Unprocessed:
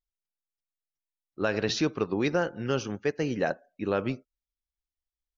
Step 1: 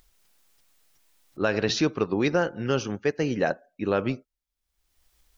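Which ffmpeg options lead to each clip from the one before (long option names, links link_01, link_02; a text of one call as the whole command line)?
ffmpeg -i in.wav -af "acompressor=mode=upward:threshold=-46dB:ratio=2.5,volume=3dB" out.wav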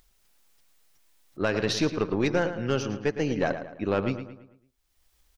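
ffmpeg -i in.wav -filter_complex "[0:a]aeval=exprs='(tanh(5.62*val(0)+0.4)-tanh(0.4))/5.62':channel_layout=same,asplit=2[link_01][link_02];[link_02]adelay=111,lowpass=frequency=3800:poles=1,volume=-10dB,asplit=2[link_03][link_04];[link_04]adelay=111,lowpass=frequency=3800:poles=1,volume=0.44,asplit=2[link_05][link_06];[link_06]adelay=111,lowpass=frequency=3800:poles=1,volume=0.44,asplit=2[link_07][link_08];[link_08]adelay=111,lowpass=frequency=3800:poles=1,volume=0.44,asplit=2[link_09][link_10];[link_10]adelay=111,lowpass=frequency=3800:poles=1,volume=0.44[link_11];[link_03][link_05][link_07][link_09][link_11]amix=inputs=5:normalize=0[link_12];[link_01][link_12]amix=inputs=2:normalize=0" out.wav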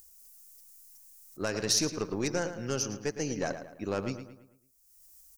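ffmpeg -i in.wav -af "aexciter=amount=10.4:drive=2.8:freq=5100,volume=-6.5dB" out.wav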